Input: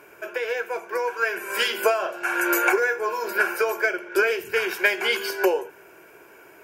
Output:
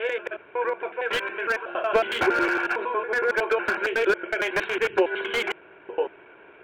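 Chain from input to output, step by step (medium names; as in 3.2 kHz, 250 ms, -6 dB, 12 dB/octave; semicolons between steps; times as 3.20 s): slices played last to first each 92 ms, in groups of 6; resampled via 8 kHz; slew-rate limiter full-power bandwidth 150 Hz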